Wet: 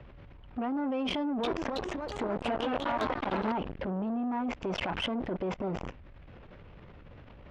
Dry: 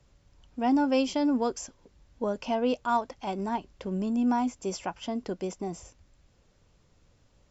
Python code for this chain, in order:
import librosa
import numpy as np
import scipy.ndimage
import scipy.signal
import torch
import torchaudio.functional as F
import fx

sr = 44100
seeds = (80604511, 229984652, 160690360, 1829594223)

y = fx.law_mismatch(x, sr, coded='mu')
y = scipy.signal.sosfilt(scipy.signal.butter(4, 2800.0, 'lowpass', fs=sr, output='sos'), y)
y = fx.low_shelf(y, sr, hz=62.0, db=-2.5)
y = fx.over_compress(y, sr, threshold_db=-31.0, ratio=-1.0)
y = fx.transient(y, sr, attack_db=1, sustain_db=6)
y = fx.level_steps(y, sr, step_db=21)
y = fx.cheby_harmonics(y, sr, harmonics=(5,), levels_db=(-8,), full_scale_db=-24.5)
y = fx.echo_pitch(y, sr, ms=324, semitones=2, count=3, db_per_echo=-3.0, at=(1.11, 3.52))
y = fx.transformer_sat(y, sr, knee_hz=940.0)
y = y * 10.0 ** (4.5 / 20.0)